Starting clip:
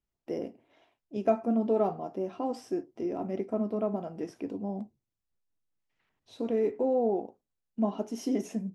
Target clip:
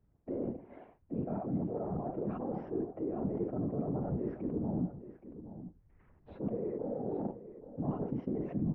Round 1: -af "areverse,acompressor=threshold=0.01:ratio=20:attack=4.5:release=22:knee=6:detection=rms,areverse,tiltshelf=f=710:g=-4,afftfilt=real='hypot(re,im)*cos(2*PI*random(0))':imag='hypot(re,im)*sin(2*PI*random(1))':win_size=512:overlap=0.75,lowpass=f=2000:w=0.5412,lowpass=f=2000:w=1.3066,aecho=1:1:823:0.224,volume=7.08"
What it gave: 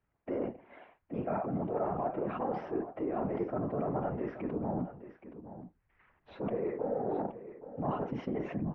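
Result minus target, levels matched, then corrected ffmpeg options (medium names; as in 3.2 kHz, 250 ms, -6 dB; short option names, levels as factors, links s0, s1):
compression: peak gain reduction -8.5 dB; 1 kHz band +7.0 dB
-af "areverse,acompressor=threshold=0.00355:ratio=20:attack=4.5:release=22:knee=6:detection=rms,areverse,tiltshelf=f=710:g=8,afftfilt=real='hypot(re,im)*cos(2*PI*random(0))':imag='hypot(re,im)*sin(2*PI*random(1))':win_size=512:overlap=0.75,lowpass=f=2000:w=0.5412,lowpass=f=2000:w=1.3066,aecho=1:1:823:0.224,volume=7.08"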